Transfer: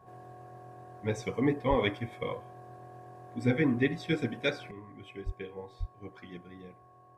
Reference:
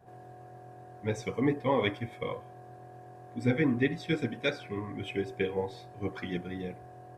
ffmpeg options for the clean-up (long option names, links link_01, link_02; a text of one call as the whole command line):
ffmpeg -i in.wav -filter_complex "[0:a]bandreject=frequency=1100:width=30,asplit=3[link_01][link_02][link_03];[link_01]afade=type=out:start_time=1.69:duration=0.02[link_04];[link_02]highpass=frequency=140:width=0.5412,highpass=frequency=140:width=1.3066,afade=type=in:start_time=1.69:duration=0.02,afade=type=out:start_time=1.81:duration=0.02[link_05];[link_03]afade=type=in:start_time=1.81:duration=0.02[link_06];[link_04][link_05][link_06]amix=inputs=3:normalize=0,asplit=3[link_07][link_08][link_09];[link_07]afade=type=out:start_time=5.25:duration=0.02[link_10];[link_08]highpass=frequency=140:width=0.5412,highpass=frequency=140:width=1.3066,afade=type=in:start_time=5.25:duration=0.02,afade=type=out:start_time=5.37:duration=0.02[link_11];[link_09]afade=type=in:start_time=5.37:duration=0.02[link_12];[link_10][link_11][link_12]amix=inputs=3:normalize=0,asplit=3[link_13][link_14][link_15];[link_13]afade=type=out:start_time=5.79:duration=0.02[link_16];[link_14]highpass=frequency=140:width=0.5412,highpass=frequency=140:width=1.3066,afade=type=in:start_time=5.79:duration=0.02,afade=type=out:start_time=5.91:duration=0.02[link_17];[link_15]afade=type=in:start_time=5.91:duration=0.02[link_18];[link_16][link_17][link_18]amix=inputs=3:normalize=0,asetnsamples=nb_out_samples=441:pad=0,asendcmd='4.71 volume volume 11dB',volume=0dB" out.wav